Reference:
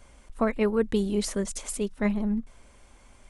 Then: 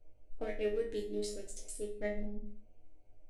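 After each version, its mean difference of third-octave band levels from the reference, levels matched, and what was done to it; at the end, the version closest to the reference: 6.5 dB: local Wiener filter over 25 samples; static phaser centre 440 Hz, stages 4; chord resonator G#2 fifth, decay 0.35 s; simulated room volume 48 m³, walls mixed, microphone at 0.34 m; trim +5 dB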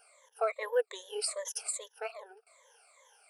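8.5 dB: drifting ripple filter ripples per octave 1.1, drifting -2.5 Hz, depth 22 dB; brick-wall FIR high-pass 420 Hz; treble shelf 9.7 kHz +8 dB; warped record 45 rpm, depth 160 cents; trim -8.5 dB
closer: first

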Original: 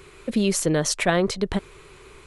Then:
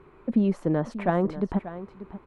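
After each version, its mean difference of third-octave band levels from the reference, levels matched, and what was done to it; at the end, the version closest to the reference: 8.0 dB: FFT filter 100 Hz 0 dB, 240 Hz +9 dB, 440 Hz +1 dB, 890 Hz +7 dB, 6.9 kHz -26 dB; delay 587 ms -14 dB; trim -7 dB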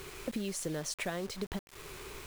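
10.5 dB: compression 6:1, threshold -35 dBFS, peak gain reduction 18 dB; word length cut 8-bit, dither none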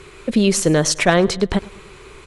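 1.5 dB: low-pass 10 kHz 12 dB/octave; on a send: feedback delay 104 ms, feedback 46%, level -20.5 dB; on the sum: trim +6 dB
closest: third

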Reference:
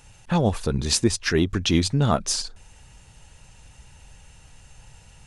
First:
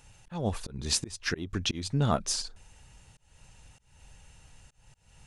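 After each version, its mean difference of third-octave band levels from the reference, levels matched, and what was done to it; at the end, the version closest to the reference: 3.5 dB: slow attack 257 ms; trim -5.5 dB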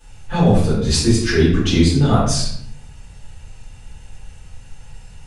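5.5 dB: simulated room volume 130 m³, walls mixed, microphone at 4.9 m; trim -10.5 dB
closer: first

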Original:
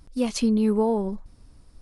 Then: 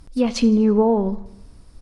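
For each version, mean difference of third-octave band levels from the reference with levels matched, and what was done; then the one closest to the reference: 2.0 dB: low-pass that closes with the level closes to 1.8 kHz, closed at -17.5 dBFS; feedback delay 82 ms, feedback 54%, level -21.5 dB; Schroeder reverb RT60 0.94 s, combs from 27 ms, DRR 18 dB; trim +5.5 dB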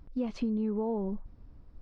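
4.0 dB: in parallel at -2.5 dB: peak limiter -23.5 dBFS, peak gain reduction 11 dB; on the sum: tape spacing loss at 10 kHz 36 dB; compression, threshold -22 dBFS, peak gain reduction 6 dB; trim -5.5 dB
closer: first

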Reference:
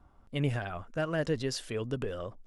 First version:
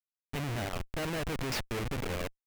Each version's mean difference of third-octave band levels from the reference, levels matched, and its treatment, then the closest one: 11.5 dB: feedback echo behind a high-pass 64 ms, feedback 44%, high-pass 1.6 kHz, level -15.5 dB; Schmitt trigger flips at -36 dBFS; peaking EQ 2.3 kHz +5 dB 1 oct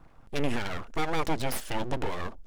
8.5 dB: in parallel at +2 dB: peak limiter -25.5 dBFS, peak gain reduction 8.5 dB; on the sum: full-wave rectifier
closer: second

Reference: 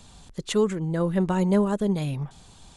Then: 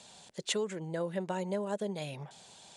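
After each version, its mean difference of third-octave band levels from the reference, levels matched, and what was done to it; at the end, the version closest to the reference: 5.0 dB: peaking EQ 440 Hz -2.5 dB 1.5 oct; compression, threshold -27 dBFS, peak gain reduction 9.5 dB; cabinet simulation 280–10000 Hz, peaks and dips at 280 Hz -9 dB, 590 Hz +5 dB, 1.2 kHz -8 dB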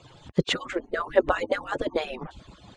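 7.5 dB: harmonic-percussive separation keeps percussive; low-pass 3.5 kHz 12 dB/octave; dynamic bell 420 Hz, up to +5 dB, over -45 dBFS, Q 0.79; trim +8.5 dB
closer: first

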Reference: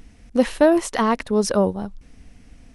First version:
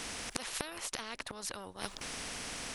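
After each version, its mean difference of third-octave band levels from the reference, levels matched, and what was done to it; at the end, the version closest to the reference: 14.0 dB: bass shelf 150 Hz -11 dB; inverted gate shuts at -19 dBFS, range -26 dB; spectrum-flattening compressor 4:1; trim +3 dB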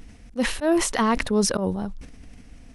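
5.0 dB: dynamic bell 580 Hz, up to -4 dB, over -27 dBFS, Q 0.82; slow attack 106 ms; decay stretcher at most 75 dB/s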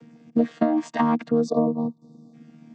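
8.5 dB: vocoder on a held chord bare fifth, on D#3; spectral selection erased 1.44–2.34 s, 1.2–3.5 kHz; compression 12:1, threshold -21 dBFS, peak gain reduction 12 dB; trim +4.5 dB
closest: second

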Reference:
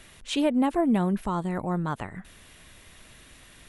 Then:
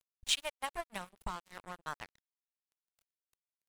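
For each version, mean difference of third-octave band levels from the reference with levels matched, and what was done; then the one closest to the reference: 13.0 dB: amplifier tone stack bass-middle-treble 10-0-10; transient shaper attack +6 dB, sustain -6 dB; crossover distortion -42.5 dBFS; trim +1 dB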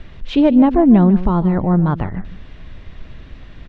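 6.5 dB: low-pass 5 kHz 24 dB/octave; tilt EQ -3 dB/octave; on a send: delay 150 ms -14.5 dB; on the sum: trim +7 dB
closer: second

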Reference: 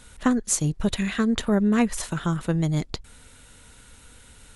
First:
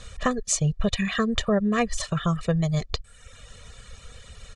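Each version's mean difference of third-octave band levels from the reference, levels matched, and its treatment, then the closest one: 4.0 dB: reverb removal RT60 0.82 s; low-pass 7.3 kHz 24 dB/octave; comb 1.7 ms, depth 84%; compression 1.5:1, threshold -32 dBFS, peak gain reduction 5.5 dB; trim +4.5 dB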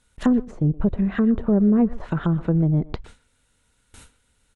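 9.0 dB: low-pass that closes with the level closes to 580 Hz, closed at -21.5 dBFS; gate with hold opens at -37 dBFS; in parallel at -2 dB: peak limiter -18 dBFS, peak gain reduction 8 dB; on the sum: speakerphone echo 120 ms, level -17 dB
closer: first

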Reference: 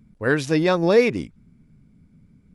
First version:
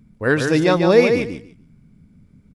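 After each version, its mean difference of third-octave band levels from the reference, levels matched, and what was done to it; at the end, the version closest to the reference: 4.0 dB: feedback delay 146 ms, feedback 18%, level -6 dB; trim +2.5 dB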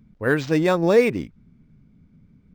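2.0 dB: decimation joined by straight lines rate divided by 4×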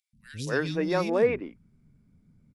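9.0 dB: three bands offset in time highs, lows, mids 130/260 ms, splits 240/2700 Hz; trim -6 dB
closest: second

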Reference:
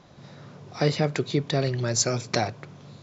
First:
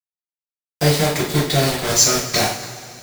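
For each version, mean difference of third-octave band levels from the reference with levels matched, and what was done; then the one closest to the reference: 13.5 dB: treble shelf 2.1 kHz +7 dB; bit crusher 4-bit; two-slope reverb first 0.43 s, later 2.9 s, from -18 dB, DRR -7 dB; trim -3 dB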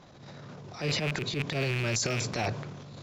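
6.0 dB: rattle on loud lows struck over -29 dBFS, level -17 dBFS; compression, threshold -25 dBFS, peak gain reduction 8.5 dB; transient shaper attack -11 dB, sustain +9 dB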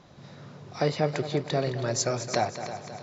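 3.5 dB: dynamic bell 800 Hz, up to +7 dB, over -39 dBFS, Q 0.8; multi-head delay 107 ms, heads second and third, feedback 47%, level -13 dB; in parallel at -1 dB: compression, threshold -37 dBFS, peak gain reduction 21.5 dB; on the sum: trim -6.5 dB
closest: third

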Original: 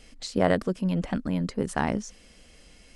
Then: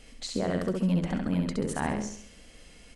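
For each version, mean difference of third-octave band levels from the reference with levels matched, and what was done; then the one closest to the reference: 4.5 dB: peaking EQ 5.2 kHz -4 dB 0.28 oct; peak limiter -18.5 dBFS, peak gain reduction 11 dB; feedback delay 67 ms, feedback 44%, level -4 dB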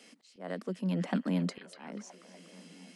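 8.0 dB: steep high-pass 170 Hz 72 dB/octave; slow attack 737 ms; repeats whose band climbs or falls 243 ms, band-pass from 3.4 kHz, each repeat -0.7 oct, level -7 dB; trim -1.5 dB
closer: first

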